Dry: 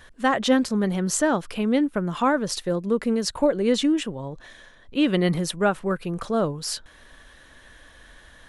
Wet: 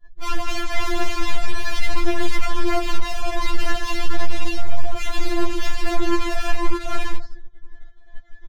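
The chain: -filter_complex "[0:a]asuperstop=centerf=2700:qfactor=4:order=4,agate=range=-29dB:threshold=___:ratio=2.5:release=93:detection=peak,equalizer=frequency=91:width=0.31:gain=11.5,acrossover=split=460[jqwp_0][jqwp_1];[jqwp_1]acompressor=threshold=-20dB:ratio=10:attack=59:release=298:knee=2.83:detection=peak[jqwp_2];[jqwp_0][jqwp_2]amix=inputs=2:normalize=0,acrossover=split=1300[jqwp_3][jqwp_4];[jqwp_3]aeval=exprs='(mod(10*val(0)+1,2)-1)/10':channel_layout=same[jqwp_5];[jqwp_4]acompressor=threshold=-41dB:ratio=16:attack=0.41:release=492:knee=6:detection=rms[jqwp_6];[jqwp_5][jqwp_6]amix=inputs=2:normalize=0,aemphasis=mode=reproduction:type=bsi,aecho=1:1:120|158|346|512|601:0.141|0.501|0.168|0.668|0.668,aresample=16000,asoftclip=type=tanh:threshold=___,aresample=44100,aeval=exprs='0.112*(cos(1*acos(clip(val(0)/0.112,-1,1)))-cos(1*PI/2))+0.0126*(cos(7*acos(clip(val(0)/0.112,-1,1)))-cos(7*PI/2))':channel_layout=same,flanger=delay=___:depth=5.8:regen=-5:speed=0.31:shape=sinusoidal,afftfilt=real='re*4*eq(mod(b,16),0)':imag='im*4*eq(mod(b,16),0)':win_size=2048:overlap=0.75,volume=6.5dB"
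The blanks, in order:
-41dB, -20.5dB, 1.7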